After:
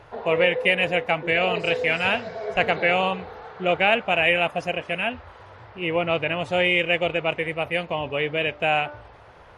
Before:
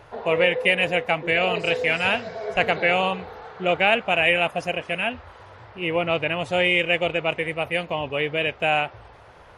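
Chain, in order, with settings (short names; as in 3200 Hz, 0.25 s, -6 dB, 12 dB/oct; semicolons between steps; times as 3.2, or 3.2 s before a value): high shelf 7300 Hz -7.5 dB; de-hum 295.9 Hz, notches 5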